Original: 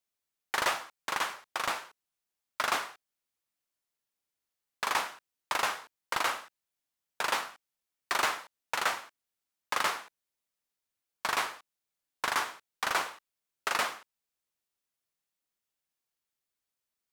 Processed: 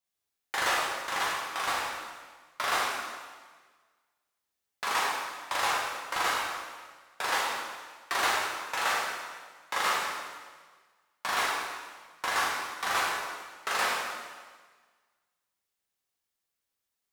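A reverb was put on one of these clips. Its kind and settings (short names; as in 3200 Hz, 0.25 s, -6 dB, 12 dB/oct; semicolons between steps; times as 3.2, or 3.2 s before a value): plate-style reverb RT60 1.5 s, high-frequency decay 0.95×, DRR -5.5 dB; gain -3.5 dB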